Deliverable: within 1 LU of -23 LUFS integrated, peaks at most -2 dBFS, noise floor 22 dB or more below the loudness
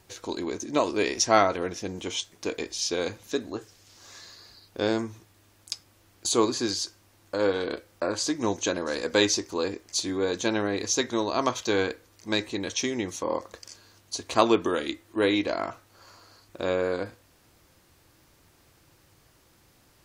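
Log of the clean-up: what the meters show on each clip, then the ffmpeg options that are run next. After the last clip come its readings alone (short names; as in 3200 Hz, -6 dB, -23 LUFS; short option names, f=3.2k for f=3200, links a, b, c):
loudness -27.5 LUFS; peak -4.5 dBFS; loudness target -23.0 LUFS
-> -af "volume=4.5dB,alimiter=limit=-2dB:level=0:latency=1"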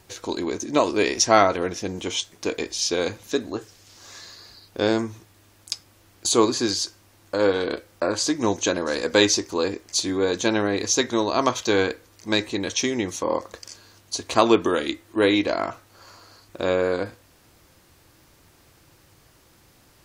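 loudness -23.5 LUFS; peak -2.0 dBFS; noise floor -57 dBFS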